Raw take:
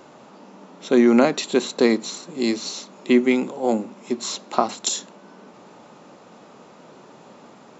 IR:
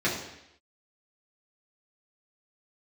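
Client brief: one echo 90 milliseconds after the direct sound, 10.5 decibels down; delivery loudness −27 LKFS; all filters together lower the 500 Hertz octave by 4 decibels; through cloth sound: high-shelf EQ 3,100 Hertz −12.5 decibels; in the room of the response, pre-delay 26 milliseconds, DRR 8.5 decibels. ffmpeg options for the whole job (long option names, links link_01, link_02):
-filter_complex "[0:a]equalizer=frequency=500:width_type=o:gain=-5.5,aecho=1:1:90:0.299,asplit=2[link_01][link_02];[1:a]atrim=start_sample=2205,adelay=26[link_03];[link_02][link_03]afir=irnorm=-1:irlink=0,volume=-21dB[link_04];[link_01][link_04]amix=inputs=2:normalize=0,highshelf=frequency=3100:gain=-12.5,volume=-5dB"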